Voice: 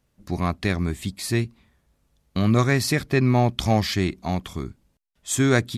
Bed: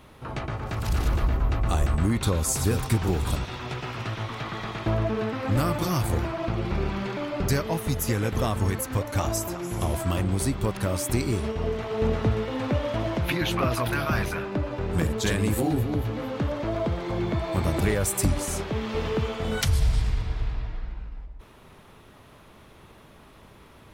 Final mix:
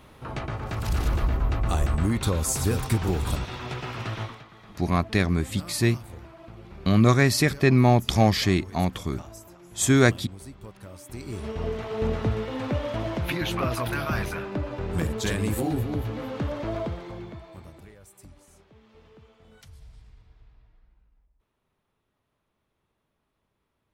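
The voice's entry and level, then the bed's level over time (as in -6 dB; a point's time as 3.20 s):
4.50 s, +1.0 dB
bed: 4.23 s -0.5 dB
4.47 s -17 dB
11.04 s -17 dB
11.56 s -2 dB
16.77 s -2 dB
17.93 s -26.5 dB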